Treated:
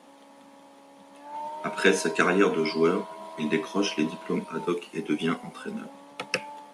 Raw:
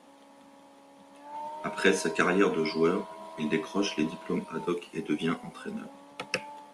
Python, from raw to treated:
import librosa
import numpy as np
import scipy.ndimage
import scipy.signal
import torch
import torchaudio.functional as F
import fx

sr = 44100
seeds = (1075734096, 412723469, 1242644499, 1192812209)

y = fx.low_shelf(x, sr, hz=67.0, db=-10.5)
y = y * librosa.db_to_amplitude(3.0)